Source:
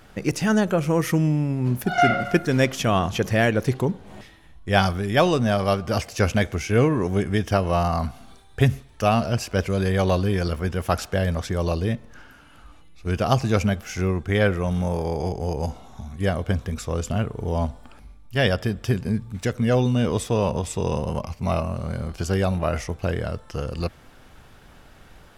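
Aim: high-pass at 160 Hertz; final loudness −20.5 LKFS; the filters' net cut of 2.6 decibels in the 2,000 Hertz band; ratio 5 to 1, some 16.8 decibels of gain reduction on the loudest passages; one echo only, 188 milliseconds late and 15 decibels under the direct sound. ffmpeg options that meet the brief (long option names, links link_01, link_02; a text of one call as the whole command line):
ffmpeg -i in.wav -af "highpass=160,equalizer=frequency=2000:width_type=o:gain=-3.5,acompressor=threshold=-34dB:ratio=5,aecho=1:1:188:0.178,volume=17.5dB" out.wav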